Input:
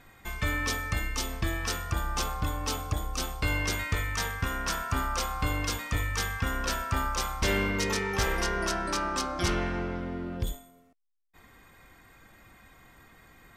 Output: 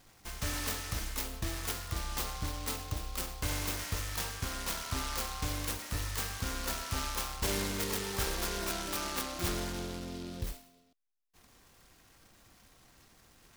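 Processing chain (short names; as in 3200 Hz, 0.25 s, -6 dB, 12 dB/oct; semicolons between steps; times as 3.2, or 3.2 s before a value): high shelf 5800 Hz +7.5 dB; noise-modulated delay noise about 3700 Hz, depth 0.12 ms; gain -6.5 dB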